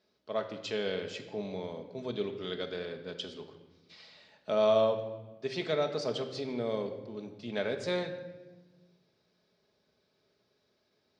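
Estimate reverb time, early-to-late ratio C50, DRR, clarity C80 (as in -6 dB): 1.2 s, 9.5 dB, 4.0 dB, 11.0 dB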